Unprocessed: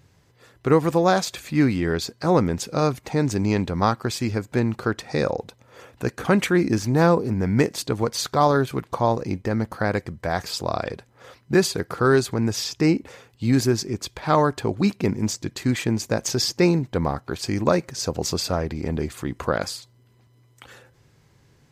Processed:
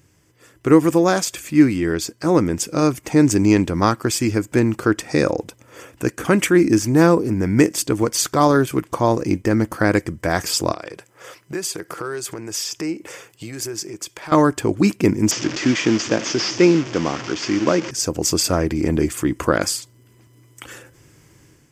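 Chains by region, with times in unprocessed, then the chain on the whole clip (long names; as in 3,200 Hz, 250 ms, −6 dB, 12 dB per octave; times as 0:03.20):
0:10.72–0:14.32: high-pass filter 170 Hz + downward compressor 3 to 1, threshold −35 dBFS + parametric band 250 Hz −15 dB 0.41 octaves
0:15.31–0:17.91: linear delta modulator 32 kbit/s, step −25.5 dBFS + high-pass filter 160 Hz
whole clip: thirty-one-band graphic EQ 315 Hz +10 dB, 800 Hz −4 dB, 4,000 Hz −12 dB, 8,000 Hz +3 dB; automatic gain control gain up to 7 dB; high-shelf EQ 2,400 Hz +8 dB; level −1.5 dB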